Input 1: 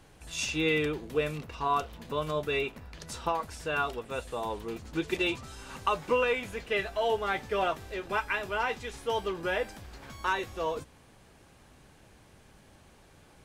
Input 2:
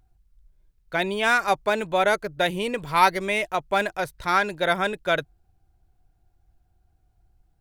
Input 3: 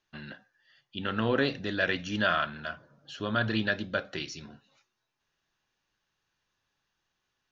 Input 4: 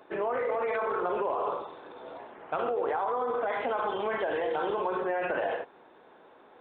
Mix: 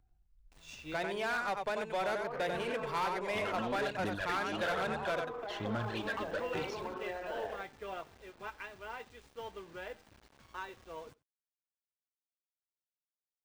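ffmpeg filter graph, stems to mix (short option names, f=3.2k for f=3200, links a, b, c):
-filter_complex "[0:a]acrusher=bits=6:mix=0:aa=0.000001,adelay=300,volume=-12.5dB,asplit=2[a][b];[b]volume=-22.5dB[c];[1:a]acrossover=split=440|1900|5700[d][e][f][g];[d]acompressor=threshold=-40dB:ratio=4[h];[e]acompressor=threshold=-24dB:ratio=4[i];[f]acompressor=threshold=-39dB:ratio=4[j];[g]acompressor=threshold=-45dB:ratio=4[k];[h][i][j][k]amix=inputs=4:normalize=0,volume=-5dB,asplit=3[l][m][n];[m]volume=-6.5dB[o];[2:a]aphaser=in_gain=1:out_gain=1:delay=3.8:decay=0.68:speed=1.2:type=sinusoidal,acompressor=threshold=-39dB:ratio=2,adelay=2400,volume=-1dB[p];[3:a]adelay=2000,volume=-10.5dB[q];[n]apad=whole_len=606299[r];[a][r]sidechaincompress=threshold=-45dB:ratio=8:attack=47:release=768[s];[c][o]amix=inputs=2:normalize=0,aecho=0:1:92:1[t];[s][l][p][q][t]amix=inputs=5:normalize=0,equalizer=f=15k:w=0.35:g=-12,asoftclip=type=tanh:threshold=-28dB,aeval=exprs='0.0398*(cos(1*acos(clip(val(0)/0.0398,-1,1)))-cos(1*PI/2))+0.002*(cos(7*acos(clip(val(0)/0.0398,-1,1)))-cos(7*PI/2))':c=same"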